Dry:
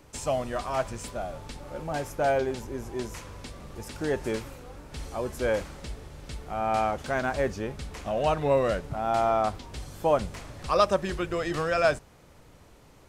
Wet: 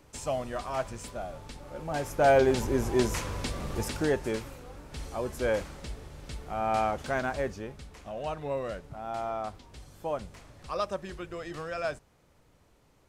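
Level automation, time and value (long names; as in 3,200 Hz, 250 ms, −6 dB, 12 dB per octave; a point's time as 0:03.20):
0:01.76 −3.5 dB
0:02.63 +8 dB
0:03.81 +8 dB
0:04.22 −1.5 dB
0:07.13 −1.5 dB
0:07.95 −9.5 dB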